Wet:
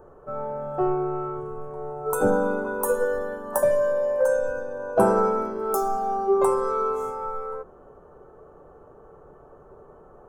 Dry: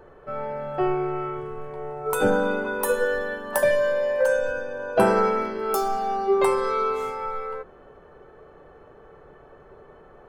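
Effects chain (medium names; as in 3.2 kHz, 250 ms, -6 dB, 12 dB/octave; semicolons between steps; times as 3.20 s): high-order bell 2.9 kHz -16 dB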